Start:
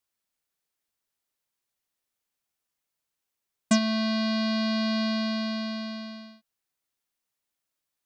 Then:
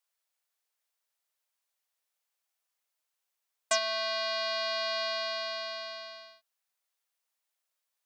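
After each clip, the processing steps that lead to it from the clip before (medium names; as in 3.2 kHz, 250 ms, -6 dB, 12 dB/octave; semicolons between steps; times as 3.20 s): inverse Chebyshev high-pass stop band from 190 Hz, stop band 50 dB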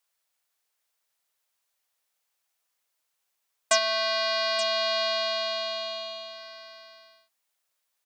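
delay 877 ms -12.5 dB; trim +5.5 dB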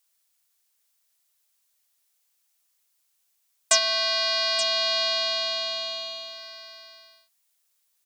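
treble shelf 3 kHz +11.5 dB; trim -3 dB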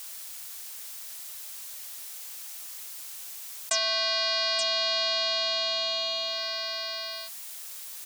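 level flattener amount 70%; trim -8.5 dB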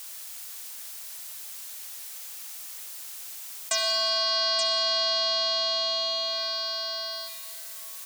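reverberation RT60 2.7 s, pre-delay 58 ms, DRR 5.5 dB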